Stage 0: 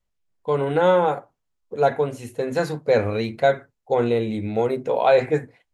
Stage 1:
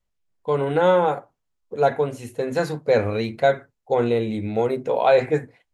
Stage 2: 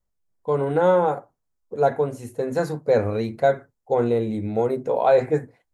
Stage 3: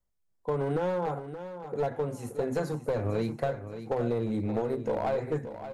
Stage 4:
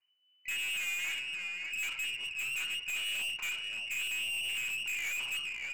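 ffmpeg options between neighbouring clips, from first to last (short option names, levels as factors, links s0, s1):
-af anull
-af "equalizer=f=2900:w=1:g=-10"
-filter_complex "[0:a]acrossover=split=150[s0][s1];[s1]acompressor=threshold=0.0708:ratio=10[s2];[s0][s2]amix=inputs=2:normalize=0,aeval=exprs='clip(val(0),-1,0.0631)':c=same,aecho=1:1:575|1150|1725|2300:0.282|0.101|0.0365|0.0131,volume=0.75"
-af "lowpass=f=2600:t=q:w=0.5098,lowpass=f=2600:t=q:w=0.6013,lowpass=f=2600:t=q:w=0.9,lowpass=f=2600:t=q:w=2.563,afreqshift=-3000,aeval=exprs='(tanh(70.8*val(0)+0.15)-tanh(0.15))/70.8':c=same,bandreject=f=145.4:t=h:w=4,bandreject=f=290.8:t=h:w=4,bandreject=f=436.2:t=h:w=4,bandreject=f=581.6:t=h:w=4,bandreject=f=727:t=h:w=4,bandreject=f=872.4:t=h:w=4,bandreject=f=1017.8:t=h:w=4,bandreject=f=1163.2:t=h:w=4,bandreject=f=1308.6:t=h:w=4,bandreject=f=1454:t=h:w=4,bandreject=f=1599.4:t=h:w=4,bandreject=f=1744.8:t=h:w=4,bandreject=f=1890.2:t=h:w=4,bandreject=f=2035.6:t=h:w=4,bandreject=f=2181:t=h:w=4,bandreject=f=2326.4:t=h:w=4,bandreject=f=2471.8:t=h:w=4,bandreject=f=2617.2:t=h:w=4,bandreject=f=2762.6:t=h:w=4,bandreject=f=2908:t=h:w=4,bandreject=f=3053.4:t=h:w=4,bandreject=f=3198.8:t=h:w=4,bandreject=f=3344.2:t=h:w=4,bandreject=f=3489.6:t=h:w=4,bandreject=f=3635:t=h:w=4,bandreject=f=3780.4:t=h:w=4,bandreject=f=3925.8:t=h:w=4,bandreject=f=4071.2:t=h:w=4,bandreject=f=4216.6:t=h:w=4,bandreject=f=4362:t=h:w=4,bandreject=f=4507.4:t=h:w=4,volume=1.5"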